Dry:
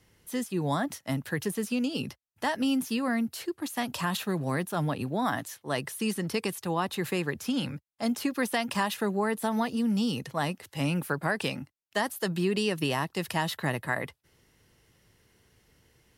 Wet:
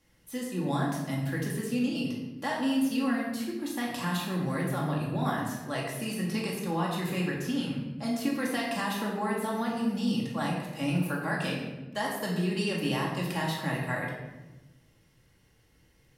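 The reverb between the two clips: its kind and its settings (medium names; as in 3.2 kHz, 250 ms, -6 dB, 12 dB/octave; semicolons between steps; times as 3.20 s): simulated room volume 560 m³, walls mixed, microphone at 2.3 m; trim -7 dB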